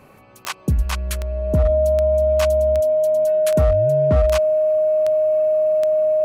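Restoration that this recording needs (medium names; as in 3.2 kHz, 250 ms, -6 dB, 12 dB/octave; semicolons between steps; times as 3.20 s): clip repair -10 dBFS; de-click; band-stop 620 Hz, Q 30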